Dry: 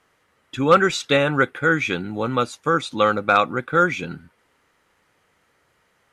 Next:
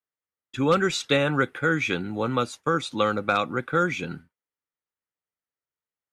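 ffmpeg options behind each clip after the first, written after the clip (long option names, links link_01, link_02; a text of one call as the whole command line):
ffmpeg -i in.wav -filter_complex "[0:a]agate=range=-33dB:threshold=-33dB:ratio=3:detection=peak,acrossover=split=360|3000[link_01][link_02][link_03];[link_02]acompressor=threshold=-20dB:ratio=3[link_04];[link_01][link_04][link_03]amix=inputs=3:normalize=0,volume=-2dB" out.wav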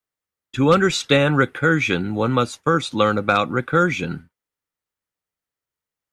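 ffmpeg -i in.wav -af "lowshelf=frequency=140:gain=6,volume=5dB" out.wav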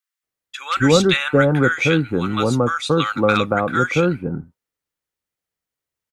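ffmpeg -i in.wav -filter_complex "[0:a]acrossover=split=1100[link_01][link_02];[link_01]adelay=230[link_03];[link_03][link_02]amix=inputs=2:normalize=0,volume=2dB" out.wav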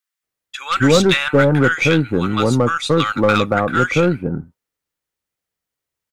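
ffmpeg -i in.wav -filter_complex "[0:a]asplit=2[link_01][link_02];[link_02]aeval=exprs='0.251*(abs(mod(val(0)/0.251+3,4)-2)-1)':channel_layout=same,volume=-10dB[link_03];[link_01][link_03]amix=inputs=2:normalize=0,aeval=exprs='0.841*(cos(1*acos(clip(val(0)/0.841,-1,1)))-cos(1*PI/2))+0.0531*(cos(4*acos(clip(val(0)/0.841,-1,1)))-cos(4*PI/2))':channel_layout=same" out.wav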